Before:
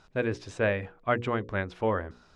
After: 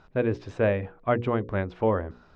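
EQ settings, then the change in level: dynamic EQ 1600 Hz, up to -5 dB, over -41 dBFS, Q 1.3; air absorption 73 m; high shelf 3400 Hz -11.5 dB; +4.5 dB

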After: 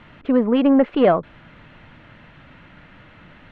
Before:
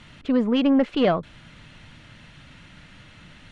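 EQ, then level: tone controls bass -7 dB, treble -15 dB; high shelf 2900 Hz -11.5 dB; +6.5 dB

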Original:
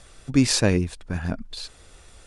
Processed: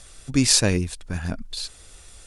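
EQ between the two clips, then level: low shelf 81 Hz +5.5 dB; high shelf 2800 Hz +8.5 dB; high shelf 9600 Hz +5 dB; -2.5 dB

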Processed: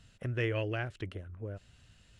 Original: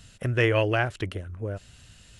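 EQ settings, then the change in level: LPF 3700 Hz 6 dB/oct; dynamic EQ 900 Hz, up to -7 dB, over -39 dBFS, Q 0.98; -8.0 dB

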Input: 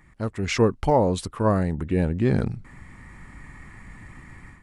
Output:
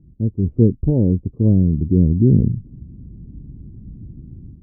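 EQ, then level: HPF 80 Hz 6 dB/oct; inverse Chebyshev low-pass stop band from 1700 Hz, stop band 70 dB; low shelf 260 Hz +11.5 dB; +2.5 dB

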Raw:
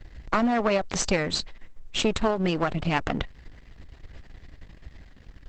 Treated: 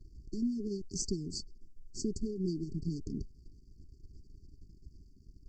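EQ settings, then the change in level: brick-wall FIR band-stop 430–4400 Hz; -8.0 dB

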